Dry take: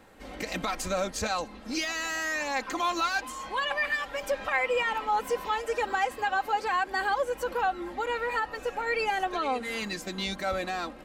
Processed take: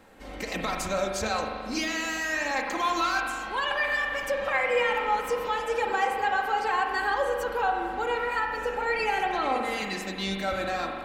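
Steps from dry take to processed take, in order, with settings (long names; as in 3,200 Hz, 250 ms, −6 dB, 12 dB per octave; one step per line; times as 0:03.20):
spring reverb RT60 1.8 s, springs 41 ms, chirp 55 ms, DRR 2 dB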